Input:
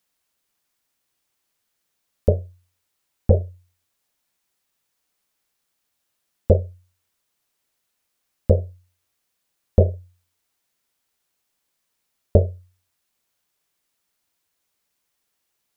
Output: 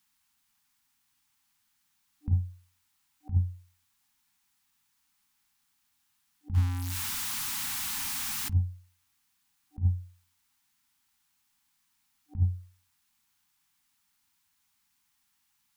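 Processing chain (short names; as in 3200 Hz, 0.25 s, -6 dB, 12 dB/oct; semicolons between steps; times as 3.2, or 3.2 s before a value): 6.54–8.53 zero-crossing step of -29 dBFS; FFT band-reject 300–760 Hz; negative-ratio compressor -21 dBFS, ratio -0.5; gain -2.5 dB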